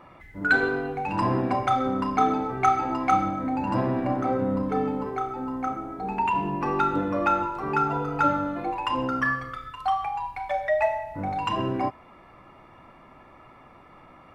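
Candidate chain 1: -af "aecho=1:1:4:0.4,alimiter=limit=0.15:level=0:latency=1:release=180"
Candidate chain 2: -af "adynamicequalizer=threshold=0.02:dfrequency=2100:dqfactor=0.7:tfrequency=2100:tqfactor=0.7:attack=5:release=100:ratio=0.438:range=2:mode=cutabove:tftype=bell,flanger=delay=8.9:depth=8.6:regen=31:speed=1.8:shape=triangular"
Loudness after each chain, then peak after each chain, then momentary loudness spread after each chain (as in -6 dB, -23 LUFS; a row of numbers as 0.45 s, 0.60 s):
-27.5 LUFS, -30.0 LUFS; -16.5 dBFS, -12.0 dBFS; 4 LU, 8 LU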